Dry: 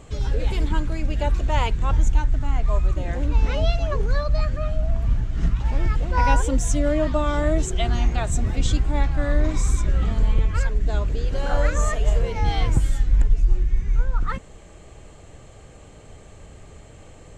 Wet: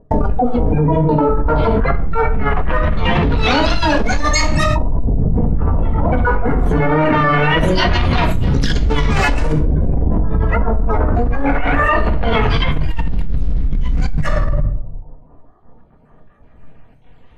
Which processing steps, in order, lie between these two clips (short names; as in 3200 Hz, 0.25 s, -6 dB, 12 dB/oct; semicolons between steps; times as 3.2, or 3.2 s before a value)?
random spectral dropouts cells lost 35%; spectral noise reduction 19 dB; sample leveller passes 5; LFO low-pass saw up 0.21 Hz 390–5500 Hz; flange 0.37 Hz, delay 6.2 ms, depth 6.7 ms, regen +77%; harmoniser -12 st 0 dB, +7 st -1 dB; shoebox room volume 740 m³, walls furnished, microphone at 1.8 m; fast leveller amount 100%; gain -17 dB